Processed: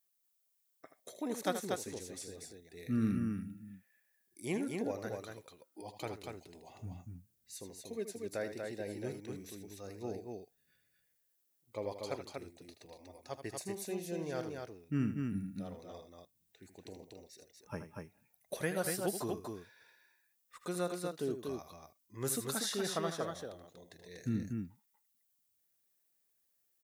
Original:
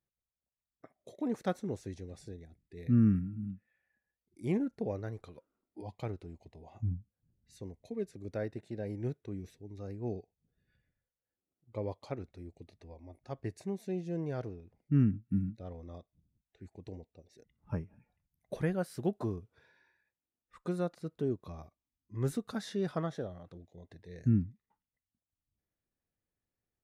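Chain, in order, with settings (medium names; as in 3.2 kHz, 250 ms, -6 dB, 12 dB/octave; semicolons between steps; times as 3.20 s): RIAA curve recording; loudspeakers at several distances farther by 27 m -10 dB, 82 m -4 dB; trim +1 dB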